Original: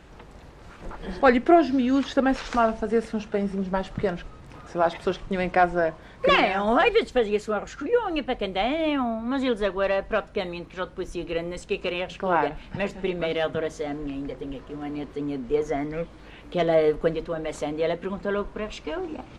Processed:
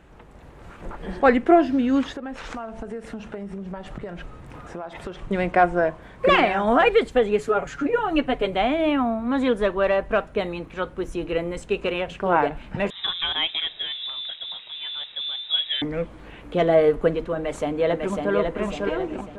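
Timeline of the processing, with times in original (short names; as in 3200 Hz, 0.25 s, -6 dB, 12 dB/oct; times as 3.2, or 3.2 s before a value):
2.11–5.24 compressor 8:1, threshold -33 dBFS
7.38–8.56 comb 7.1 ms, depth 76%
12.9–15.82 inverted band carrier 3800 Hz
17.35–18.34 echo throw 0.55 s, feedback 50%, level -3.5 dB
whole clip: bell 4900 Hz -8 dB 1 oct; AGC gain up to 5.5 dB; gain -2 dB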